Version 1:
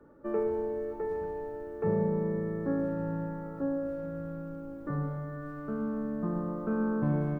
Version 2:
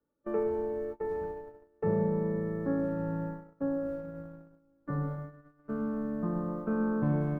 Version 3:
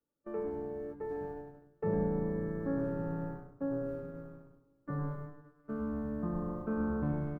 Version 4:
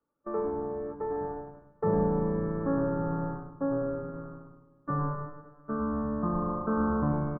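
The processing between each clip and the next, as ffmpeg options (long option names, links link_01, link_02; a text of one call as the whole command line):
ffmpeg -i in.wav -af "bandreject=frequency=380:width=12,agate=range=-26dB:threshold=-36dB:ratio=16:detection=peak" out.wav
ffmpeg -i in.wav -filter_complex "[0:a]dynaudnorm=framelen=690:gausssize=3:maxgain=4dB,asplit=2[link_01][link_02];[link_02]asplit=4[link_03][link_04][link_05][link_06];[link_03]adelay=99,afreqshift=-150,volume=-10dB[link_07];[link_04]adelay=198,afreqshift=-300,volume=-18.2dB[link_08];[link_05]adelay=297,afreqshift=-450,volume=-26.4dB[link_09];[link_06]adelay=396,afreqshift=-600,volume=-34.5dB[link_10];[link_07][link_08][link_09][link_10]amix=inputs=4:normalize=0[link_11];[link_01][link_11]amix=inputs=2:normalize=0,volume=-7.5dB" out.wav
ffmpeg -i in.wav -af "lowpass=frequency=1200:width_type=q:width=2.9,aecho=1:1:268|536|804:0.106|0.0371|0.013,volume=4.5dB" out.wav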